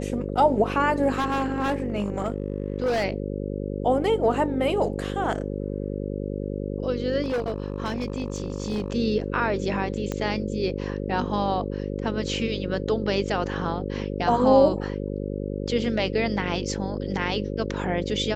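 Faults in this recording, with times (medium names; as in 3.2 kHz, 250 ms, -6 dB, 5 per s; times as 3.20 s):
buzz 50 Hz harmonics 11 -30 dBFS
1.14–3.05 s: clipped -20 dBFS
7.22–8.94 s: clipped -22.5 dBFS
10.12 s: pop -15 dBFS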